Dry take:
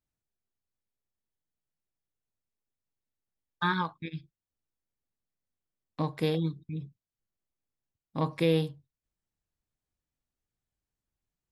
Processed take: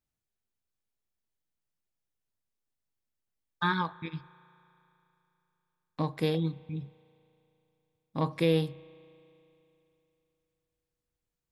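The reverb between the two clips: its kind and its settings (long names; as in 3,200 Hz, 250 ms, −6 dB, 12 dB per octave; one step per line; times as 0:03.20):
spring reverb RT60 3.1 s, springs 35 ms, chirp 70 ms, DRR 20 dB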